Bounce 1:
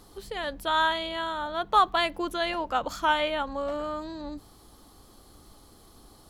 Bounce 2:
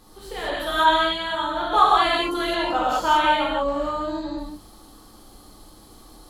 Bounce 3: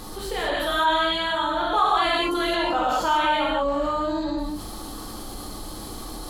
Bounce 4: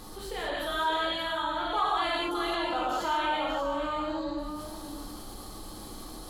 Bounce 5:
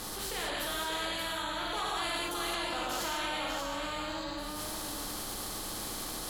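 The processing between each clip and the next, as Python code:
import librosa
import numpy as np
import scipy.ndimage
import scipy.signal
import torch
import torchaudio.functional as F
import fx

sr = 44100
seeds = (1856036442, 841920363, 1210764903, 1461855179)

y1 = fx.rev_gated(x, sr, seeds[0], gate_ms=230, shape='flat', drr_db=-7.0)
y1 = y1 * librosa.db_to_amplitude(-2.0)
y2 = fx.env_flatten(y1, sr, amount_pct=50)
y2 = y2 * librosa.db_to_amplitude(-5.5)
y3 = y2 + 10.0 ** (-9.0 / 20.0) * np.pad(y2, (int(582 * sr / 1000.0), 0))[:len(y2)]
y3 = y3 * librosa.db_to_amplitude(-7.5)
y4 = fx.spectral_comp(y3, sr, ratio=2.0)
y4 = y4 * librosa.db_to_amplitude(-5.5)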